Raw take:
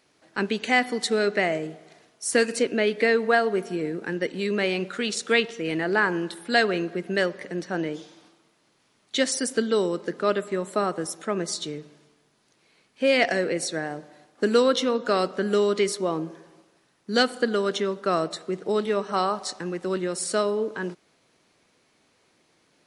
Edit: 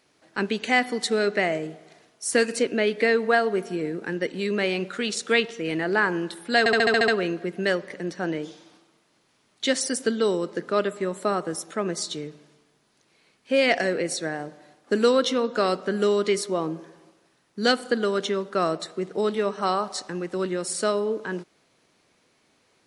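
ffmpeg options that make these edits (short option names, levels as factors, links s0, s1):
-filter_complex "[0:a]asplit=8[s0][s1][s2][s3][s4][s5][s6][s7];[s0]atrim=end=6.662[s8];[s1]atrim=start=6.588:end=6.662[s9];[s2]atrim=start=6.588:end=6.662[s10];[s3]atrim=start=6.588:end=6.662[s11];[s4]atrim=start=6.588:end=6.662[s12];[s5]atrim=start=6.588:end=6.662[s13];[s6]atrim=start=6.588:end=6.662[s14];[s7]atrim=start=6.588[s15];[s8][s9]acrossfade=d=0.004:c1=hsin:c2=hsin[s16];[s16][s10]acrossfade=d=0.004:c1=hsin:c2=hsin[s17];[s17][s11]acrossfade=d=0.004:c1=hsin:c2=hsin[s18];[s18][s12]acrossfade=d=0.004:c1=hsin:c2=hsin[s19];[s19][s13]acrossfade=d=0.004:c1=hsin:c2=hsin[s20];[s20][s14]acrossfade=d=0.004:c1=hsin:c2=hsin[s21];[s21][s15]acrossfade=d=0.004:c1=hsin:c2=hsin"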